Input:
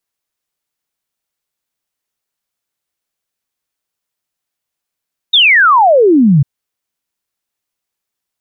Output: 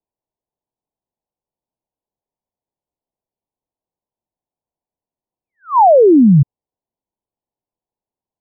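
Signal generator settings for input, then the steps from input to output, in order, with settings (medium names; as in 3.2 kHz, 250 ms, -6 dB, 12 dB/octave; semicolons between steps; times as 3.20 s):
log sweep 3.8 kHz -> 130 Hz 1.10 s -4.5 dBFS
steep low-pass 1 kHz 72 dB/octave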